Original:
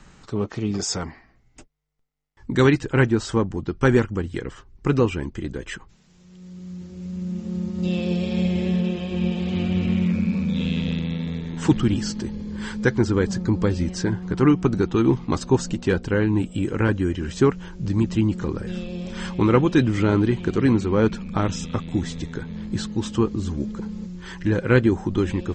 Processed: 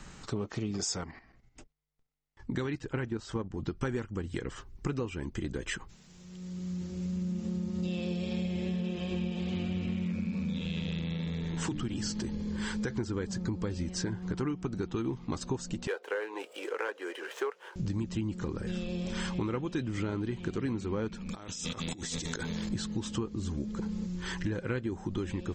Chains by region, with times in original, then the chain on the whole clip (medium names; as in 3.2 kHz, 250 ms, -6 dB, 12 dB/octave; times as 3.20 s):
1.01–3.61 s: level held to a coarse grid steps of 10 dB + distance through air 58 m
10.58–12.90 s: hum notches 50/100/150/200/250/300 Hz + compression 2:1, threshold -25 dBFS
15.87–17.76 s: median filter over 9 samples + elliptic high-pass 440 Hz, stop band 80 dB + treble shelf 6.8 kHz -9.5 dB
21.29–22.69 s: tone controls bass -8 dB, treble +10 dB + compressor with a negative ratio -38 dBFS
whole clip: treble shelf 4.5 kHz +5 dB; compression 6:1, threshold -31 dBFS